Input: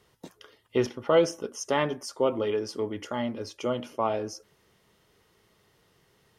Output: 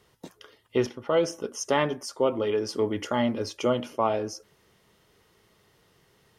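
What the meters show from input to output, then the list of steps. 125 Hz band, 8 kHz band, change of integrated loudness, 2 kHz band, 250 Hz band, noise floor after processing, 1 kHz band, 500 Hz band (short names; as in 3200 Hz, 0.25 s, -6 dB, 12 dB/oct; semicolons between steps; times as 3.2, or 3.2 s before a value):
+2.0 dB, +2.0 dB, +1.5 dB, +1.5 dB, +2.5 dB, -64 dBFS, +2.0 dB, +1.0 dB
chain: vocal rider 0.5 s; gain +1.5 dB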